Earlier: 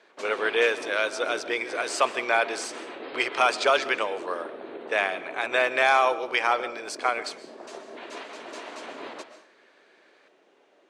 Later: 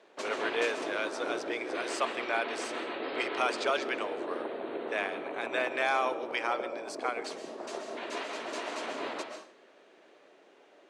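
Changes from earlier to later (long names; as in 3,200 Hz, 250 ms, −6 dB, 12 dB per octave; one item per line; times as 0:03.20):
speech −8.5 dB
background: send +6.5 dB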